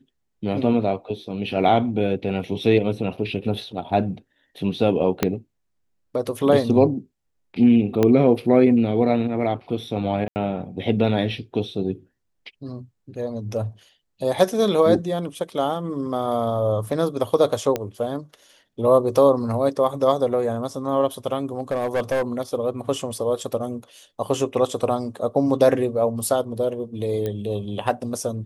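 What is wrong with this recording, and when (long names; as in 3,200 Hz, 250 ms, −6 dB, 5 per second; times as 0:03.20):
0:05.23: click −4 dBFS
0:08.03: click −7 dBFS
0:10.28–0:10.36: drop-out 79 ms
0:17.76: click −10 dBFS
0:21.58–0:22.23: clipping −18 dBFS
0:27.26: click −15 dBFS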